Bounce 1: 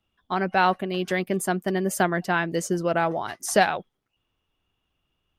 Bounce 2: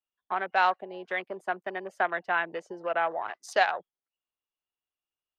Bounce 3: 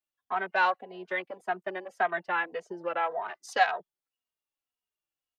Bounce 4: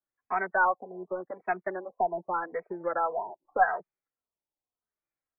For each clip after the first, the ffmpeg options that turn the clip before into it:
ffmpeg -i in.wav -filter_complex "[0:a]afwtdn=0.02,acrossover=split=380 5200:gain=0.178 1 0.0891[link_01][link_02][link_03];[link_01][link_02][link_03]amix=inputs=3:normalize=0,acrossover=split=480|4400[link_04][link_05][link_06];[link_04]acompressor=threshold=-43dB:ratio=6[link_07];[link_07][link_05][link_06]amix=inputs=3:normalize=0,volume=-2dB" out.wav
ffmpeg -i in.wav -filter_complex "[0:a]asplit=2[link_01][link_02];[link_02]adelay=2.9,afreqshift=-1.8[link_03];[link_01][link_03]amix=inputs=2:normalize=1,volume=2dB" out.wav
ffmpeg -i in.wav -af "equalizer=frequency=930:width=1.5:gain=-2,aeval=exprs='0.282*(cos(1*acos(clip(val(0)/0.282,-1,1)))-cos(1*PI/2))+0.00708*(cos(4*acos(clip(val(0)/0.282,-1,1)))-cos(4*PI/2))':channel_layout=same,afftfilt=real='re*lt(b*sr/1024,990*pow(2600/990,0.5+0.5*sin(2*PI*0.83*pts/sr)))':imag='im*lt(b*sr/1024,990*pow(2600/990,0.5+0.5*sin(2*PI*0.83*pts/sr)))':win_size=1024:overlap=0.75,volume=2.5dB" out.wav

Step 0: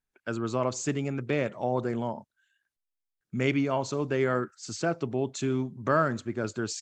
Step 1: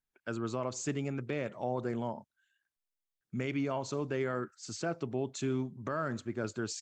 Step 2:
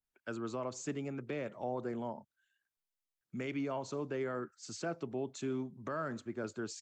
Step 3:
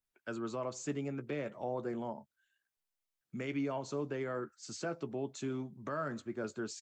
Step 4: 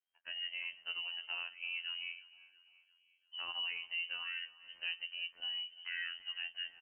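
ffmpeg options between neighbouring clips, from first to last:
ffmpeg -i in.wav -af "alimiter=limit=-19dB:level=0:latency=1:release=101,volume=-4.5dB" out.wav
ffmpeg -i in.wav -filter_complex "[0:a]acrossover=split=150|500|1800[link_01][link_02][link_03][link_04];[link_01]acompressor=threshold=-53dB:ratio=6[link_05];[link_05][link_02][link_03][link_04]amix=inputs=4:normalize=0,adynamicequalizer=threshold=0.00355:dfrequency=1600:dqfactor=0.7:tfrequency=1600:tqfactor=0.7:attack=5:release=100:ratio=0.375:range=2:mode=cutabove:tftype=highshelf,volume=-3dB" out.wav
ffmpeg -i in.wav -filter_complex "[0:a]asplit=2[link_01][link_02];[link_02]adelay=14,volume=-11dB[link_03];[link_01][link_03]amix=inputs=2:normalize=0" out.wav
ffmpeg -i in.wav -af "afftfilt=real='hypot(re,im)*cos(PI*b)':imag='0':win_size=2048:overlap=0.75,aecho=1:1:344|688|1032|1376:0.106|0.0551|0.0286|0.0149,lowpass=frequency=2700:width_type=q:width=0.5098,lowpass=frequency=2700:width_type=q:width=0.6013,lowpass=frequency=2700:width_type=q:width=0.9,lowpass=frequency=2700:width_type=q:width=2.563,afreqshift=-3200" out.wav

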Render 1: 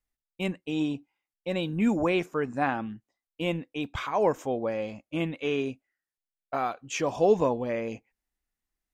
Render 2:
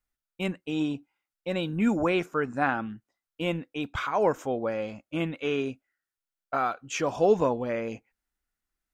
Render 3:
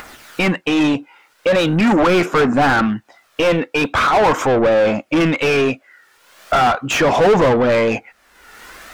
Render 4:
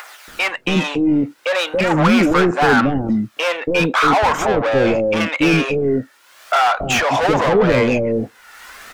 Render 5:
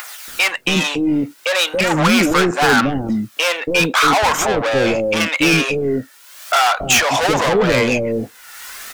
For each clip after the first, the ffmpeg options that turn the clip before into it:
ffmpeg -i in.wav -af "equalizer=frequency=1400:width_type=o:width=0.31:gain=8" out.wav
ffmpeg -i in.wav -filter_complex "[0:a]aphaser=in_gain=1:out_gain=1:delay=2.3:decay=0.37:speed=0.41:type=triangular,asplit=2[link_01][link_02];[link_02]highpass=frequency=720:poles=1,volume=34dB,asoftclip=type=tanh:threshold=-7.5dB[link_03];[link_01][link_03]amix=inputs=2:normalize=0,lowpass=frequency=1700:poles=1,volume=-6dB,acompressor=mode=upward:threshold=-18dB:ratio=2.5,volume=2dB" out.wav
ffmpeg -i in.wav -filter_complex "[0:a]acrossover=split=550[link_01][link_02];[link_01]adelay=280[link_03];[link_03][link_02]amix=inputs=2:normalize=0,volume=1dB" out.wav
ffmpeg -i in.wav -filter_complex "[0:a]crystalizer=i=4:c=0,asplit=2[link_01][link_02];[link_02]adynamicsmooth=sensitivity=8:basefreq=6700,volume=-10dB[link_03];[link_01][link_03]amix=inputs=2:normalize=0,volume=-4dB" out.wav

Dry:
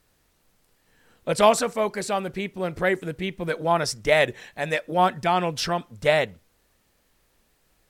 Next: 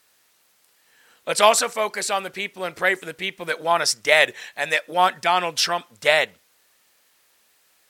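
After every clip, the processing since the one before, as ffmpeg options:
ffmpeg -i in.wav -af "highpass=frequency=1400:poles=1,volume=8dB" out.wav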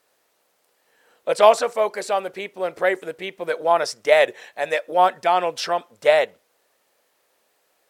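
ffmpeg -i in.wav -filter_complex "[0:a]acrossover=split=6100[link_01][link_02];[link_01]equalizer=frequency=530:width=0.66:gain=13[link_03];[link_02]alimiter=limit=-21.5dB:level=0:latency=1:release=76[link_04];[link_03][link_04]amix=inputs=2:normalize=0,volume=-7.5dB" out.wav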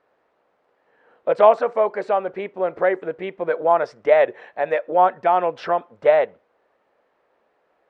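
ffmpeg -i in.wav -filter_complex "[0:a]lowpass=1500,asplit=2[link_01][link_02];[link_02]acompressor=threshold=-23dB:ratio=6,volume=-1.5dB[link_03];[link_01][link_03]amix=inputs=2:normalize=0,volume=-1dB" out.wav

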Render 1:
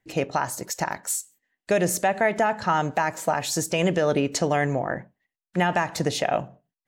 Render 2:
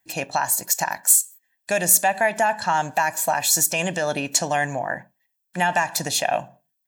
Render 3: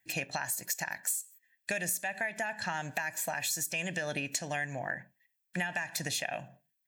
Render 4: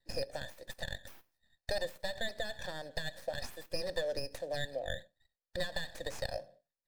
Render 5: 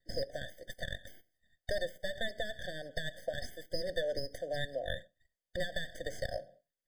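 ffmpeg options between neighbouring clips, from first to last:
ffmpeg -i in.wav -af "aemphasis=mode=production:type=bsi,aecho=1:1:1.2:0.61" out.wav
ffmpeg -i in.wav -af "equalizer=frequency=125:width_type=o:width=1:gain=4,equalizer=frequency=1000:width_type=o:width=1:gain=-8,equalizer=frequency=2000:width_type=o:width=1:gain=9,acompressor=threshold=-26dB:ratio=6,volume=-5dB" out.wav
ffmpeg -i in.wav -filter_complex "[0:a]asplit=3[link_01][link_02][link_03];[link_01]bandpass=frequency=530:width_type=q:width=8,volume=0dB[link_04];[link_02]bandpass=frequency=1840:width_type=q:width=8,volume=-6dB[link_05];[link_03]bandpass=frequency=2480:width_type=q:width=8,volume=-9dB[link_06];[link_04][link_05][link_06]amix=inputs=3:normalize=0,acrossover=split=340|1500[link_07][link_08][link_09];[link_09]aeval=exprs='abs(val(0))':channel_layout=same[link_10];[link_07][link_08][link_10]amix=inputs=3:normalize=0,volume=10dB" out.wav
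ffmpeg -i in.wav -af "afftfilt=real='re*eq(mod(floor(b*sr/1024/740),2),0)':imag='im*eq(mod(floor(b*sr/1024/740),2),0)':win_size=1024:overlap=0.75,volume=1dB" out.wav

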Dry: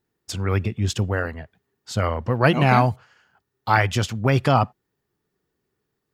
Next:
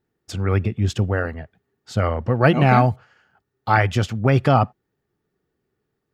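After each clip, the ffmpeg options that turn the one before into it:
ffmpeg -i in.wav -af "highshelf=frequency=3000:gain=-9,bandreject=frequency=1000:width=8.9,volume=2.5dB" out.wav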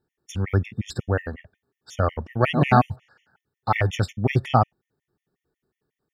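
ffmpeg -i in.wav -af "afftfilt=real='re*gt(sin(2*PI*5.5*pts/sr)*(1-2*mod(floor(b*sr/1024/1800),2)),0)':imag='im*gt(sin(2*PI*5.5*pts/sr)*(1-2*mod(floor(b*sr/1024/1800),2)),0)':win_size=1024:overlap=0.75" out.wav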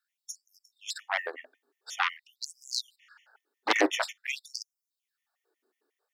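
ffmpeg -i in.wav -af "asubboost=boost=11:cutoff=66,aeval=exprs='0.562*(cos(1*acos(clip(val(0)/0.562,-1,1)))-cos(1*PI/2))+0.282*(cos(7*acos(clip(val(0)/0.562,-1,1)))-cos(7*PI/2))':channel_layout=same,afftfilt=real='re*gte(b*sr/1024,220*pow(4900/220,0.5+0.5*sin(2*PI*0.48*pts/sr)))':imag='im*gte(b*sr/1024,220*pow(4900/220,0.5+0.5*sin(2*PI*0.48*pts/sr)))':win_size=1024:overlap=0.75,volume=-5.5dB" out.wav

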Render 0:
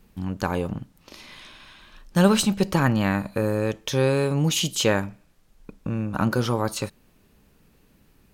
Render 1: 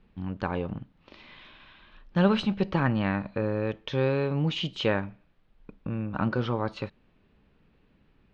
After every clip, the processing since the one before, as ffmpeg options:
ffmpeg -i in.wav -af "lowpass=frequency=3600:width=0.5412,lowpass=frequency=3600:width=1.3066,volume=-4.5dB" out.wav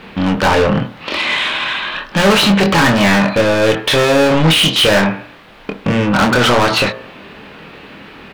ffmpeg -i in.wav -filter_complex "[0:a]asplit=2[link_01][link_02];[link_02]highpass=frequency=720:poles=1,volume=39dB,asoftclip=type=tanh:threshold=-8dB[link_03];[link_01][link_03]amix=inputs=2:normalize=0,lowpass=frequency=5800:poles=1,volume=-6dB,asplit=2[link_04][link_05];[link_05]adelay=25,volume=-6dB[link_06];[link_04][link_06]amix=inputs=2:normalize=0,bandreject=frequency=58.75:width_type=h:width=4,bandreject=frequency=117.5:width_type=h:width=4,bandreject=frequency=176.25:width_type=h:width=4,bandreject=frequency=235:width_type=h:width=4,bandreject=frequency=293.75:width_type=h:width=4,bandreject=frequency=352.5:width_type=h:width=4,bandreject=frequency=411.25:width_type=h:width=4,bandreject=frequency=470:width_type=h:width=4,bandreject=frequency=528.75:width_type=h:width=4,bandreject=frequency=587.5:width_type=h:width=4,bandreject=frequency=646.25:width_type=h:width=4,bandreject=frequency=705:width_type=h:width=4,bandreject=frequency=763.75:width_type=h:width=4,bandreject=frequency=822.5:width_type=h:width=4,bandreject=frequency=881.25:width_type=h:width=4,bandreject=frequency=940:width_type=h:width=4,bandreject=frequency=998.75:width_type=h:width=4,bandreject=frequency=1057.5:width_type=h:width=4,bandreject=frequency=1116.25:width_type=h:width=4,bandreject=frequency=1175:width_type=h:width=4,bandreject=frequency=1233.75:width_type=h:width=4,bandreject=frequency=1292.5:width_type=h:width=4,bandreject=frequency=1351.25:width_type=h:width=4,bandreject=frequency=1410:width_type=h:width=4,bandreject=frequency=1468.75:width_type=h:width=4,bandreject=frequency=1527.5:width_type=h:width=4,bandreject=frequency=1586.25:width_type=h:width=4,bandreject=frequency=1645:width_type=h:width=4,bandreject=frequency=1703.75:width_type=h:width=4,bandreject=frequency=1762.5:width_type=h:width=4,volume=3.5dB" out.wav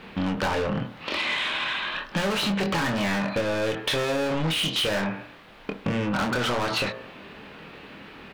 ffmpeg -i in.wav -af "acompressor=threshold=-15dB:ratio=6,volume=-8dB" out.wav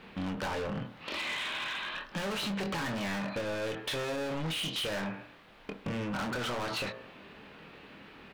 ffmpeg -i in.wav -af "asoftclip=type=hard:threshold=-23.5dB,volume=-7.5dB" out.wav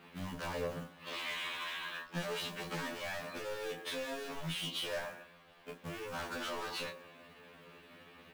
ffmpeg -i in.wav -filter_complex "[0:a]acrossover=split=110[link_01][link_02];[link_01]tremolo=f=8.2:d=0.95[link_03];[link_02]acrusher=bits=4:mode=log:mix=0:aa=0.000001[link_04];[link_03][link_04]amix=inputs=2:normalize=0,afftfilt=real='re*2*eq(mod(b,4),0)':imag='im*2*eq(mod(b,4),0)':win_size=2048:overlap=0.75,volume=-2.5dB" out.wav

